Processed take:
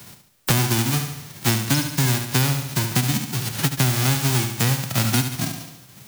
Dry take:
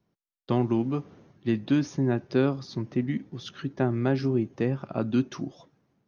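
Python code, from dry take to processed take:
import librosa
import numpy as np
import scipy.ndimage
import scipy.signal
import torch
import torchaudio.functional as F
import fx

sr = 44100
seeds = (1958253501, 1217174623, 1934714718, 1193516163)

p1 = fx.envelope_flatten(x, sr, power=0.1)
p2 = fx.peak_eq(p1, sr, hz=110.0, db=14.0, octaves=1.9)
p3 = p2 + fx.echo_feedback(p2, sr, ms=71, feedback_pct=42, wet_db=-8, dry=0)
y = fx.band_squash(p3, sr, depth_pct=100)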